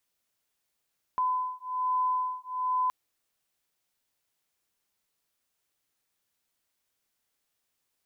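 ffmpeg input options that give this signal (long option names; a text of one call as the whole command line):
ffmpeg -f lavfi -i "aevalsrc='0.0335*(sin(2*PI*1010*t)+sin(2*PI*1011.2*t))':duration=1.72:sample_rate=44100" out.wav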